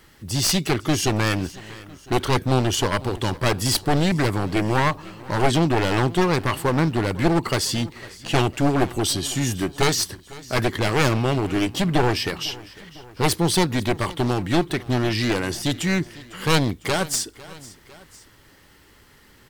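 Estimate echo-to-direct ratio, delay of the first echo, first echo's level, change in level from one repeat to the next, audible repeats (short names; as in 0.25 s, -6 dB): -18.5 dB, 0.502 s, -20.0 dB, -4.5 dB, 2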